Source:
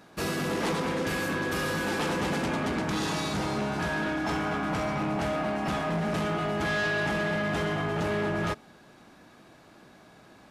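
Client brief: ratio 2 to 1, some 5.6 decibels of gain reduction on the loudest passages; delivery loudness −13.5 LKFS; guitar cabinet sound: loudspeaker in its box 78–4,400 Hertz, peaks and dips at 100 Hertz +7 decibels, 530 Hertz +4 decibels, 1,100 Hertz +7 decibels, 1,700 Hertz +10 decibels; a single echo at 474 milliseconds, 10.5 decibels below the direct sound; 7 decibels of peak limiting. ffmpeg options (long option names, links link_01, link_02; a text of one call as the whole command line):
ffmpeg -i in.wav -af "acompressor=threshold=-37dB:ratio=2,alimiter=level_in=10dB:limit=-24dB:level=0:latency=1,volume=-10dB,highpass=78,equalizer=frequency=100:width_type=q:width=4:gain=7,equalizer=frequency=530:width_type=q:width=4:gain=4,equalizer=frequency=1100:width_type=q:width=4:gain=7,equalizer=frequency=1700:width_type=q:width=4:gain=10,lowpass=frequency=4400:width=0.5412,lowpass=frequency=4400:width=1.3066,aecho=1:1:474:0.299,volume=20.5dB" out.wav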